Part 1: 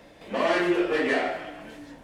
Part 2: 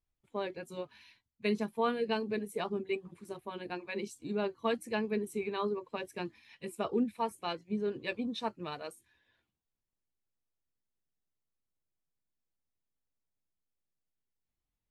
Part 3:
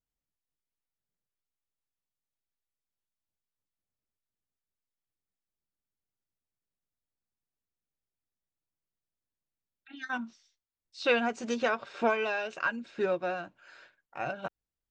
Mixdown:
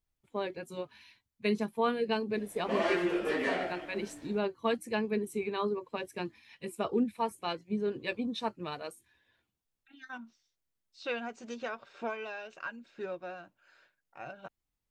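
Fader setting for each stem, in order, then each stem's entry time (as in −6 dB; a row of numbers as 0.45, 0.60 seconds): −7.0, +1.5, −9.5 decibels; 2.35, 0.00, 0.00 seconds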